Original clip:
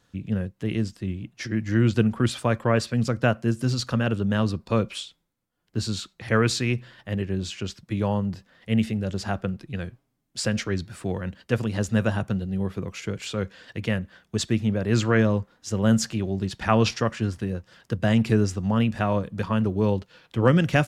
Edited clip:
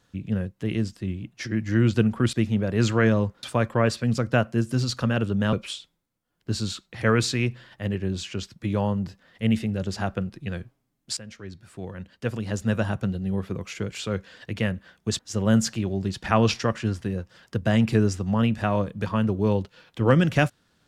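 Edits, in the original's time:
4.43–4.80 s: delete
10.44–12.36 s: fade in, from -19.5 dB
14.46–15.56 s: move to 2.33 s

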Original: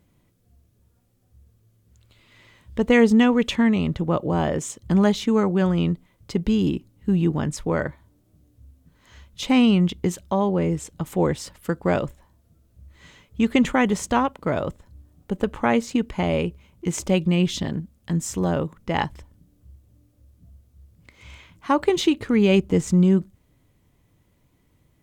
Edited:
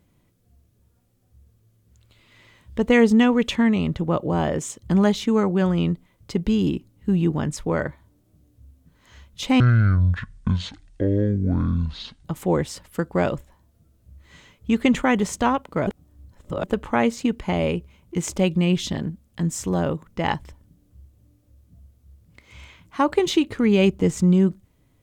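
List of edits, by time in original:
9.60–10.95 s: speed 51%
14.57–15.34 s: reverse

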